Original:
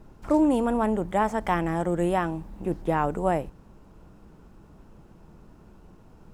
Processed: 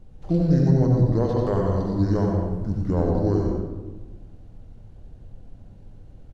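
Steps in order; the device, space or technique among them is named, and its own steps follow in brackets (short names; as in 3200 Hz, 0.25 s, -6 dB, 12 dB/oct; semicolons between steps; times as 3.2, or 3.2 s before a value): monster voice (pitch shift -10 st; low shelf 130 Hz +7 dB; echo 90 ms -9 dB; reverb RT60 1.2 s, pre-delay 70 ms, DRR 0.5 dB); gain -2 dB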